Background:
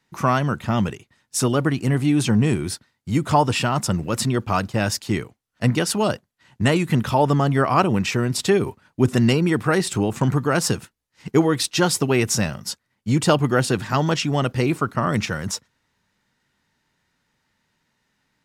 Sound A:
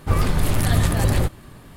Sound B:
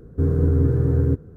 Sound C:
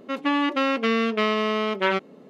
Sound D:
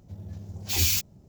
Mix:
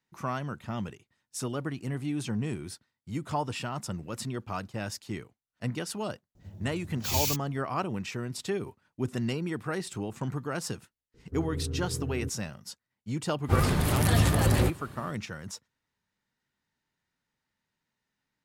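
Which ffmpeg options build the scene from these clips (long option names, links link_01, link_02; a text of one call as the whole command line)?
ffmpeg -i bed.wav -i cue0.wav -i cue1.wav -i cue2.wav -i cue3.wav -filter_complex "[0:a]volume=-13.5dB[link_01];[1:a]highpass=66[link_02];[4:a]atrim=end=1.28,asetpts=PTS-STARTPTS,volume=-5dB,afade=type=in:duration=0.004:curve=hsin,afade=type=out:start_time=1.276:duration=0.004:curve=hsin,adelay=6350[link_03];[2:a]atrim=end=1.36,asetpts=PTS-STARTPTS,volume=-16dB,afade=type=in:duration=0.004:curve=hsin,afade=type=out:start_time=1.356:duration=0.004:curve=hsin,adelay=491274S[link_04];[link_02]atrim=end=1.76,asetpts=PTS-STARTPTS,volume=-3dB,afade=type=in:duration=0.1,afade=type=out:start_time=1.66:duration=0.1,adelay=13420[link_05];[link_01][link_03][link_04][link_05]amix=inputs=4:normalize=0" out.wav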